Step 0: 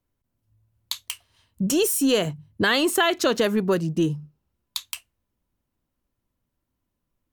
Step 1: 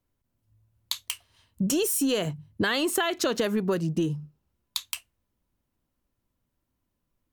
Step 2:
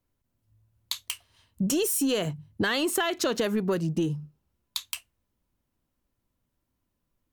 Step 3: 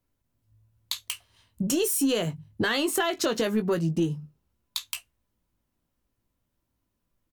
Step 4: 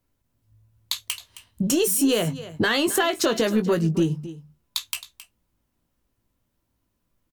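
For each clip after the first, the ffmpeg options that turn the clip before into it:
ffmpeg -i in.wav -af "acompressor=threshold=-22dB:ratio=6" out.wav
ffmpeg -i in.wav -af "asoftclip=type=tanh:threshold=-14dB" out.wav
ffmpeg -i in.wav -filter_complex "[0:a]asplit=2[link_01][link_02];[link_02]adelay=18,volume=-8.5dB[link_03];[link_01][link_03]amix=inputs=2:normalize=0" out.wav
ffmpeg -i in.wav -af "aecho=1:1:267:0.168,volume=4dB" out.wav

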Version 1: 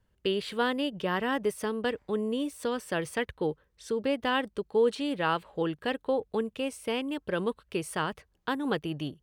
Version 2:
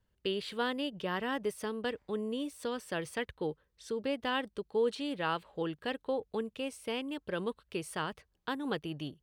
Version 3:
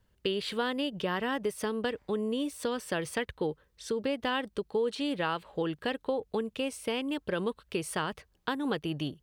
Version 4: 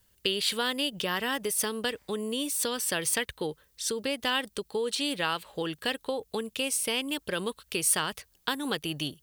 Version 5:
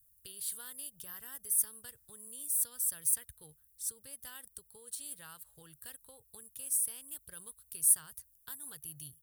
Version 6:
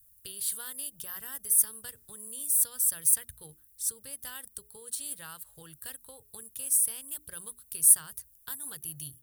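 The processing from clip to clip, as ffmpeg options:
ffmpeg -i in.wav -af "equalizer=frequency=4100:width=1.2:gain=3,volume=-5.5dB" out.wav
ffmpeg -i in.wav -af "acompressor=threshold=-35dB:ratio=3,volume=7dB" out.wav
ffmpeg -i in.wav -af "crystalizer=i=6:c=0,volume=-2dB" out.wav
ffmpeg -i in.wav -af "firequalizer=gain_entry='entry(130,0);entry(190,-19);entry(300,-22);entry(770,-19);entry(1500,-12);entry(2400,-22);entry(3400,-16);entry(10000,11)':delay=0.05:min_phase=1,volume=-8.5dB" out.wav
ffmpeg -i in.wav -af "bandreject=frequency=60:width_type=h:width=6,bandreject=frequency=120:width_type=h:width=6,bandreject=frequency=180:width_type=h:width=6,bandreject=frequency=240:width_type=h:width=6,bandreject=frequency=300:width_type=h:width=6,bandreject=frequency=360:width_type=h:width=6,bandreject=frequency=420:width_type=h:width=6,volume=6.5dB" out.wav

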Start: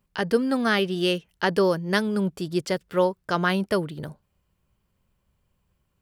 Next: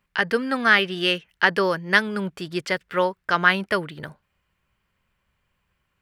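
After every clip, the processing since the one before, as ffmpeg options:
ffmpeg -i in.wav -af "equalizer=frequency=1900:width_type=o:width=2:gain=14,volume=-4dB" out.wav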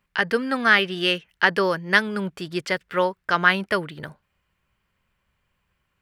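ffmpeg -i in.wav -af anull out.wav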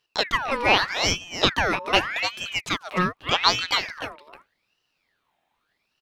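ffmpeg -i in.wav -af "aecho=1:1:297:0.335,aeval=exprs='val(0)*sin(2*PI*1800*n/s+1800*0.6/0.83*sin(2*PI*0.83*n/s))':channel_layout=same,volume=1dB" out.wav

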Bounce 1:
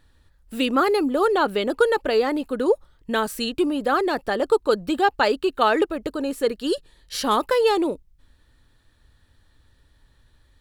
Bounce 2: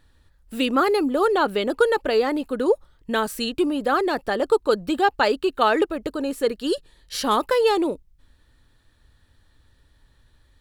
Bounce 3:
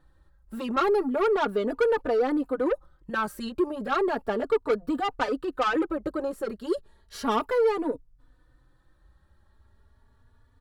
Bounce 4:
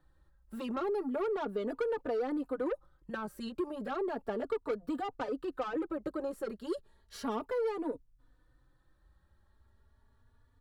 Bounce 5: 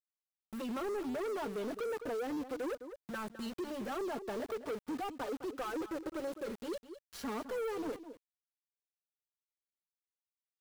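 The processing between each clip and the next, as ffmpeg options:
ffmpeg -i in.wav -af anull out.wav
ffmpeg -i in.wav -filter_complex "[0:a]highshelf=frequency=1800:width_type=q:width=1.5:gain=-9,asoftclip=type=tanh:threshold=-18dB,asplit=2[link_01][link_02];[link_02]adelay=3.4,afreqshift=0.34[link_03];[link_01][link_03]amix=inputs=2:normalize=1,volume=1dB" out.wav
ffmpeg -i in.wav -filter_complex "[0:a]acrossover=split=81|780[link_01][link_02][link_03];[link_01]acompressor=threshold=-53dB:ratio=4[link_04];[link_02]acompressor=threshold=-25dB:ratio=4[link_05];[link_03]acompressor=threshold=-37dB:ratio=4[link_06];[link_04][link_05][link_06]amix=inputs=3:normalize=0,volume=-6dB" out.wav
ffmpeg -i in.wav -af "aeval=exprs='val(0)*gte(abs(val(0)),0.00531)':channel_layout=same,aecho=1:1:209:0.168,asoftclip=type=tanh:threshold=-35.5dB,volume=1.5dB" out.wav

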